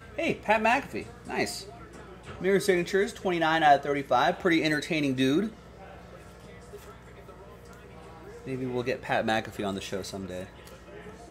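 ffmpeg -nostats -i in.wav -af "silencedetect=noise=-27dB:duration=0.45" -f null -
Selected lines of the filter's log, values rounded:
silence_start: 1.57
silence_end: 2.43 | silence_duration: 0.86
silence_start: 5.47
silence_end: 8.48 | silence_duration: 3.01
silence_start: 10.43
silence_end: 11.31 | silence_duration: 0.88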